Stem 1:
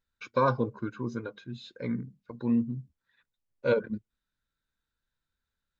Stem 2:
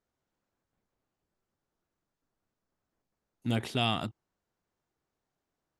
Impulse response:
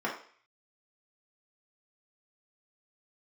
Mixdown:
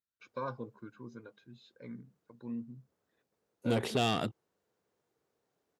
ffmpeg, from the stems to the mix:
-filter_complex "[0:a]volume=-13.5dB[a];[1:a]equalizer=f=460:t=o:w=0.58:g=9.5,asoftclip=type=tanh:threshold=-25dB,adelay=200,volume=2dB[b];[a][b]amix=inputs=2:normalize=0,highpass=99"

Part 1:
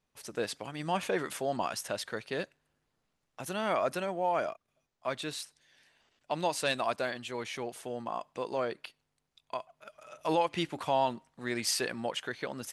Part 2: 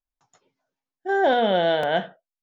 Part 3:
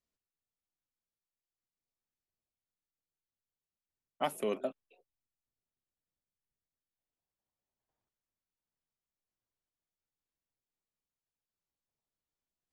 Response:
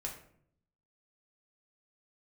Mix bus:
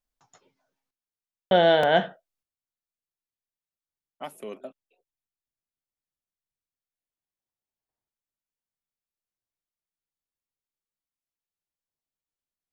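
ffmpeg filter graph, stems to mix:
-filter_complex "[1:a]volume=2.5dB,asplit=3[a][b][c];[a]atrim=end=0.91,asetpts=PTS-STARTPTS,afade=t=out:st=0.906:d=0.004:c=hsin[d];[b]atrim=start=0.91:end=1.51,asetpts=PTS-STARTPTS,volume=0[e];[c]atrim=start=1.51,asetpts=PTS-STARTPTS,afade=t=in:d=0.004:c=hsin[f];[d][e][f]concat=n=3:v=0:a=1[g];[2:a]volume=-4.5dB[h];[g][h]amix=inputs=2:normalize=0"

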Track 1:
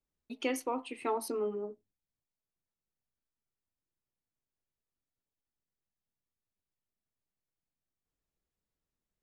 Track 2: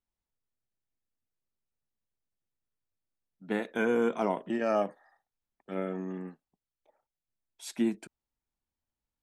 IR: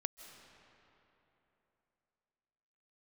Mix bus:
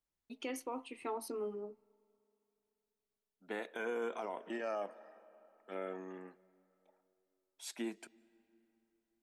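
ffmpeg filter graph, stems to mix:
-filter_complex "[0:a]volume=-6.5dB,asplit=2[a][b];[b]volume=-22.5dB[c];[1:a]highpass=410,volume=-5dB,asplit=2[d][e];[e]volume=-13.5dB[f];[2:a]atrim=start_sample=2205[g];[c][f]amix=inputs=2:normalize=0[h];[h][g]afir=irnorm=-1:irlink=0[i];[a][d][i]amix=inputs=3:normalize=0,alimiter=level_in=6.5dB:limit=-24dB:level=0:latency=1:release=53,volume=-6.5dB"

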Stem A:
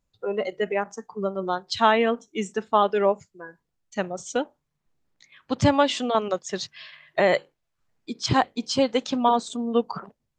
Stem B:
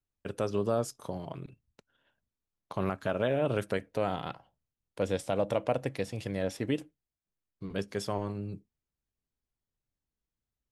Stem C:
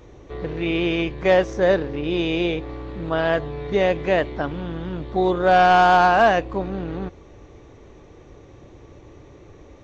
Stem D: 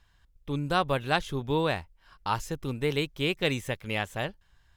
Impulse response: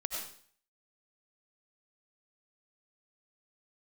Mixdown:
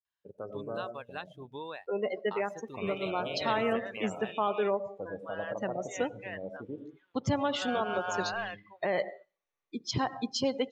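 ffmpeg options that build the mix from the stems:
-filter_complex "[0:a]adelay=1650,volume=-6dB,asplit=2[a][b];[b]volume=-15dB[c];[1:a]afwtdn=0.0178,volume=-5dB,asplit=2[d][e];[e]volume=-8dB[f];[2:a]highpass=1.2k,adelay=2150,volume=-13dB[g];[3:a]adelay=50,volume=-1.5dB[h];[d][h]amix=inputs=2:normalize=0,highpass=f=860:p=1,acompressor=threshold=-40dB:ratio=2.5,volume=0dB[i];[a][g]amix=inputs=2:normalize=0,alimiter=limit=-21.5dB:level=0:latency=1:release=147,volume=0dB[j];[4:a]atrim=start_sample=2205[k];[c][f]amix=inputs=2:normalize=0[l];[l][k]afir=irnorm=-1:irlink=0[m];[i][j][m]amix=inputs=3:normalize=0,afftdn=nr=21:nf=-41"

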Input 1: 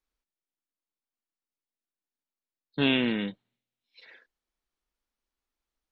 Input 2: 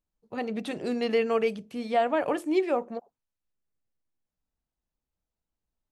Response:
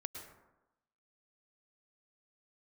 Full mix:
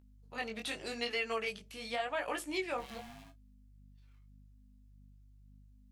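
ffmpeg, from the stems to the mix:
-filter_complex "[0:a]flanger=delay=1.4:depth=3:regen=-76:speed=1.8:shape=triangular,aeval=exprs='val(0)*sgn(sin(2*PI*470*n/s))':c=same,volume=-18dB[a];[1:a]aeval=exprs='val(0)+0.00631*(sin(2*PI*50*n/s)+sin(2*PI*2*50*n/s)/2+sin(2*PI*3*50*n/s)/3+sin(2*PI*4*50*n/s)/4+sin(2*PI*5*50*n/s)/5)':c=same,tiltshelf=f=860:g=-10,volume=-3dB[b];[a][b]amix=inputs=2:normalize=0,flanger=delay=16:depth=6.6:speed=0.85,alimiter=limit=-23.5dB:level=0:latency=1:release=299"

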